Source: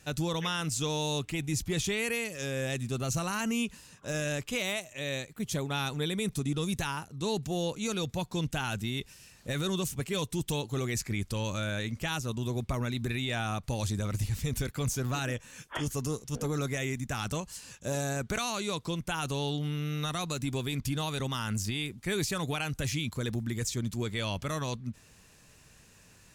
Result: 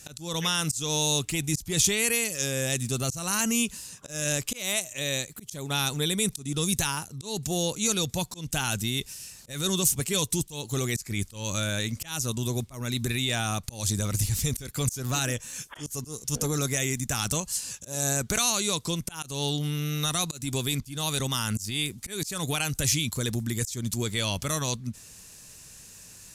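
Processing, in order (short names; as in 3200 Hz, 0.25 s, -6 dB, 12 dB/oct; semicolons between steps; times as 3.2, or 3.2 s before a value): tone controls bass +1 dB, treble +13 dB; auto swell 0.224 s; downsampling 32000 Hz; gain +2.5 dB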